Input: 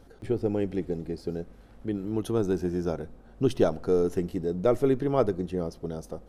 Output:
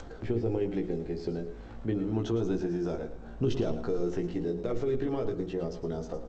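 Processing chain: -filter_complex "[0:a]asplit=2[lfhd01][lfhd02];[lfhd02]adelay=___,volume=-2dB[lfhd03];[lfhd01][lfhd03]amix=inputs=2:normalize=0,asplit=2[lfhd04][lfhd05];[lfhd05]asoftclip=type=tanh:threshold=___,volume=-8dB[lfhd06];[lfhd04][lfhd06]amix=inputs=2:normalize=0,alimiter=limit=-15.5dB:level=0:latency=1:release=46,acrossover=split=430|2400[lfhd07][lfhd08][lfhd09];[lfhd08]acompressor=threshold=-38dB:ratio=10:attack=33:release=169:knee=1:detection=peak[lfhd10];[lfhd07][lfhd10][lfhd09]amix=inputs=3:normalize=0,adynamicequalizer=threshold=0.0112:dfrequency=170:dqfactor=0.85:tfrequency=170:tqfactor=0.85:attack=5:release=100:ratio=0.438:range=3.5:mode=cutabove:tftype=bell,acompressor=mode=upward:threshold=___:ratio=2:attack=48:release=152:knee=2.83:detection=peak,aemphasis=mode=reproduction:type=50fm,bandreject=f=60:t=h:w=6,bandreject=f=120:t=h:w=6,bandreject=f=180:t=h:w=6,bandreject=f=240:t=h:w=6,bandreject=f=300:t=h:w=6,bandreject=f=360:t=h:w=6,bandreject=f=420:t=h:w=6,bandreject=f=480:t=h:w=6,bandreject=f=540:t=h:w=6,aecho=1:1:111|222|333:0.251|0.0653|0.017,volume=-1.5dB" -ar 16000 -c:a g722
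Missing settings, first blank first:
17, -17dB, -36dB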